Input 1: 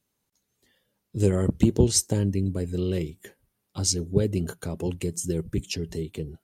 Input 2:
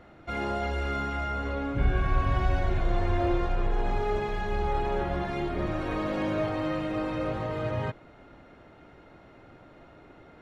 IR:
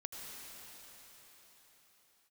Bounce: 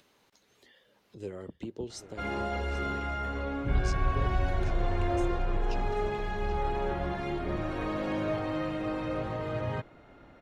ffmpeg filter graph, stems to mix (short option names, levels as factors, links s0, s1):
-filter_complex "[0:a]acrossover=split=300 4800:gain=0.251 1 0.141[s0][s1][s2];[s0][s1][s2]amix=inputs=3:normalize=0,acompressor=mode=upward:threshold=0.0316:ratio=2.5,volume=0.224,asplit=2[s3][s4];[s4]volume=0.188[s5];[1:a]adelay=1900,volume=0.75[s6];[s5]aecho=0:1:782:1[s7];[s3][s6][s7]amix=inputs=3:normalize=0"